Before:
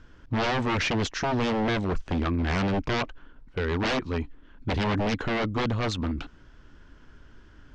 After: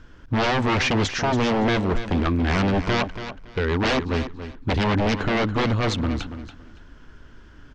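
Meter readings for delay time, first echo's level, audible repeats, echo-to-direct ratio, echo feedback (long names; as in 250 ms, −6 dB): 282 ms, −11.0 dB, 2, −11.0 dB, 21%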